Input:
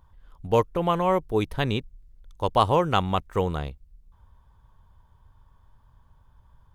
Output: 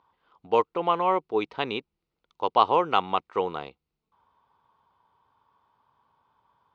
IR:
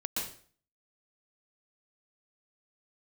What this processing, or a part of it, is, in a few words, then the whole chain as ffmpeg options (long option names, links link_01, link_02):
phone earpiece: -af "highpass=420,equalizer=frequency=590:width_type=q:width=4:gain=-7,equalizer=frequency=1700:width_type=q:width=4:gain=-10,equalizer=frequency=3400:width_type=q:width=4:gain=-5,lowpass=frequency=4200:width=0.5412,lowpass=frequency=4200:width=1.3066,volume=3dB"